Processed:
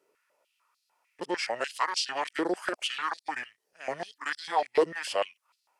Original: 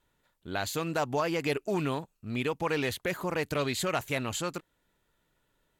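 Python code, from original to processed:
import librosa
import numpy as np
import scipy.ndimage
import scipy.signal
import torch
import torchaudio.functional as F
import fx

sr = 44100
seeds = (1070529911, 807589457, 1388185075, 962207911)

y = x[::-1].copy()
y = fx.formant_shift(y, sr, semitones=-6)
y = fx.filter_held_highpass(y, sr, hz=6.7, low_hz=420.0, high_hz=4200.0)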